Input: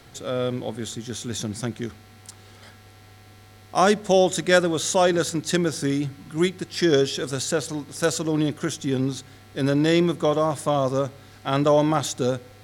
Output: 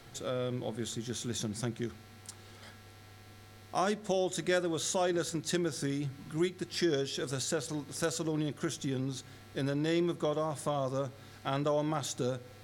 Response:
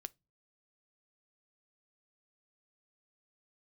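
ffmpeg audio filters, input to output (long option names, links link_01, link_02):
-filter_complex "[0:a]acompressor=threshold=-29dB:ratio=2[link_01];[1:a]atrim=start_sample=2205[link_02];[link_01][link_02]afir=irnorm=-1:irlink=0"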